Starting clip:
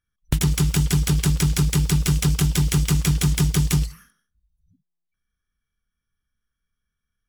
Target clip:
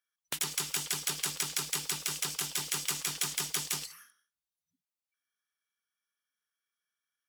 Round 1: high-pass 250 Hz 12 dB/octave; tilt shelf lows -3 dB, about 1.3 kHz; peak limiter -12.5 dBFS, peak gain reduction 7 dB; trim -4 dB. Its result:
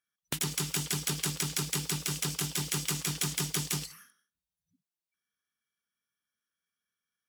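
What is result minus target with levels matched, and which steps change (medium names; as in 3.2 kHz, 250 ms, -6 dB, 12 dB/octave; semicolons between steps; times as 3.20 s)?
250 Hz band +10.0 dB
change: high-pass 530 Hz 12 dB/octave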